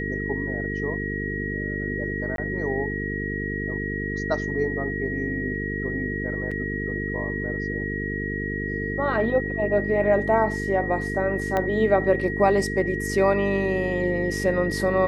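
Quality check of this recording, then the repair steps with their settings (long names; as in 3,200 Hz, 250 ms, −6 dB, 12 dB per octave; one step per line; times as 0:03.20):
mains buzz 50 Hz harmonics 9 −30 dBFS
whistle 1,900 Hz −30 dBFS
0:02.36–0:02.38: drop-out 22 ms
0:06.51–0:06.52: drop-out 5.2 ms
0:11.57: click −12 dBFS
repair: click removal
hum removal 50 Hz, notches 9
notch filter 1,900 Hz, Q 30
repair the gap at 0:02.36, 22 ms
repair the gap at 0:06.51, 5.2 ms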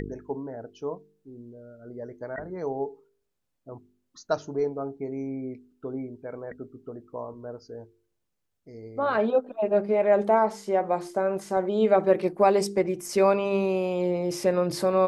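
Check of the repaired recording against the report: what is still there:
0:11.57: click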